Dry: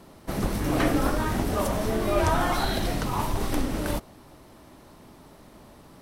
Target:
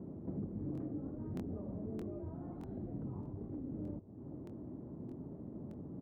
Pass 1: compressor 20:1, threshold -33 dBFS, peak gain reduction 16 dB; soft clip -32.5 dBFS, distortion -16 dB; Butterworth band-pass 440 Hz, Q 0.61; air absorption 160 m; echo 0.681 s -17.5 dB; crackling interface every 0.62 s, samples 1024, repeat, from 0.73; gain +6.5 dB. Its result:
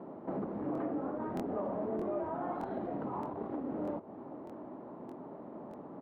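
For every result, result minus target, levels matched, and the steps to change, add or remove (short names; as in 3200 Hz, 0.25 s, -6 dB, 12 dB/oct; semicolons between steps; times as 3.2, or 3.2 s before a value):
compressor: peak gain reduction -6.5 dB; 500 Hz band +5.5 dB
change: compressor 20:1, threshold -40 dBFS, peak gain reduction 22.5 dB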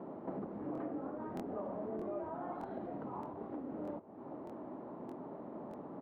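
500 Hz band +5.5 dB
change: Butterworth band-pass 180 Hz, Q 0.61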